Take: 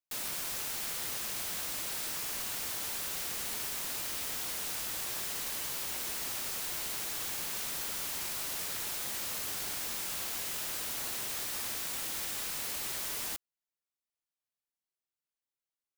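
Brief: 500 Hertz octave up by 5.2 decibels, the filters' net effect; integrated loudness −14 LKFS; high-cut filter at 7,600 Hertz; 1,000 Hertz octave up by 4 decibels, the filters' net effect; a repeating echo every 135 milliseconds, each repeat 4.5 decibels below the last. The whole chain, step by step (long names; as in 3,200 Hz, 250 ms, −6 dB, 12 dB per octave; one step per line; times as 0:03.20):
low-pass filter 7,600 Hz
parametric band 500 Hz +5.5 dB
parametric band 1,000 Hz +3.5 dB
repeating echo 135 ms, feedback 60%, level −4.5 dB
level +22.5 dB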